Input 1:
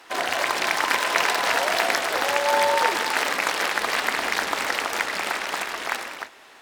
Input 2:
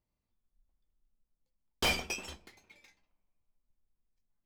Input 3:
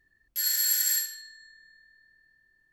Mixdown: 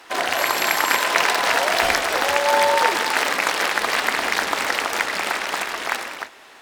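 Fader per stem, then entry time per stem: +3.0, 0.0, −6.0 decibels; 0.00, 0.00, 0.00 seconds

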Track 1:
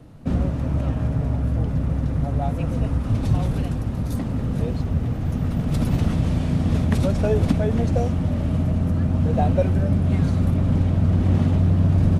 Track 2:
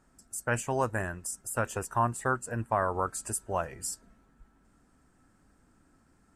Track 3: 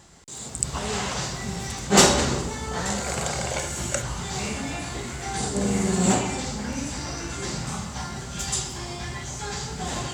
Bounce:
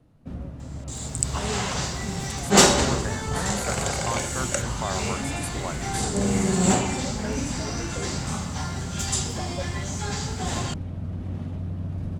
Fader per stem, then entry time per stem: −13.5, −3.5, +0.5 decibels; 0.00, 2.10, 0.60 seconds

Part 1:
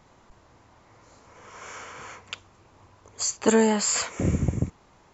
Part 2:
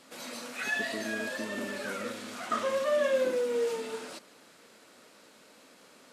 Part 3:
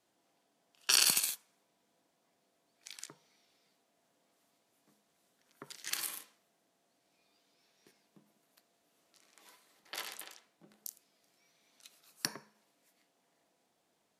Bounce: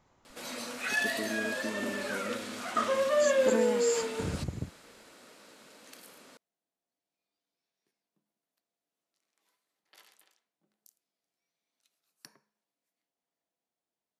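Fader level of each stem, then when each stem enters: −11.0, +1.5, −17.0 decibels; 0.00, 0.25, 0.00 seconds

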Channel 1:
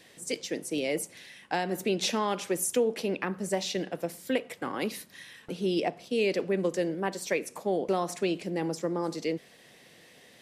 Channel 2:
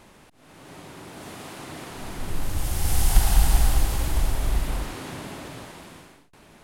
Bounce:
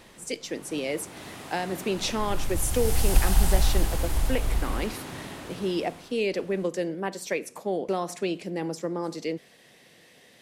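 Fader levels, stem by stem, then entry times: 0.0, −2.5 decibels; 0.00, 0.00 seconds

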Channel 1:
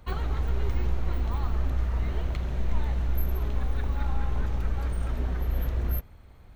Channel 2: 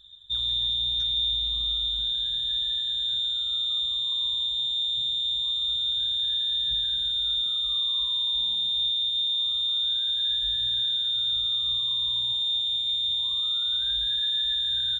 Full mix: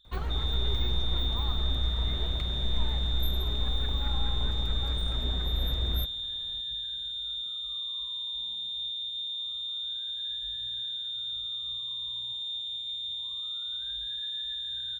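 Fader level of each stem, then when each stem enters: −2.5, −9.0 decibels; 0.05, 0.00 seconds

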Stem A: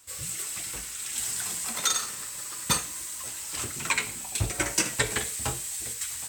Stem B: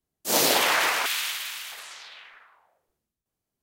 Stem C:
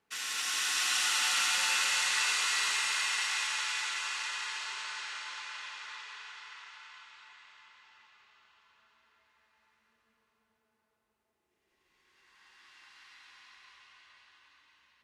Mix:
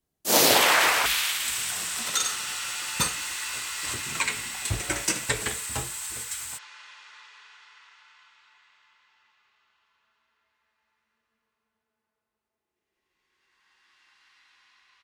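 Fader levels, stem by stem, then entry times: −1.0, +2.5, −5.0 decibels; 0.30, 0.00, 1.25 seconds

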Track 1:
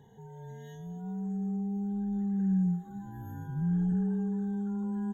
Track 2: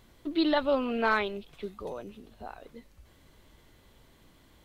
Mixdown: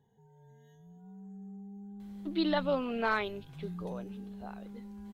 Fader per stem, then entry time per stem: −13.5, −4.0 decibels; 0.00, 2.00 seconds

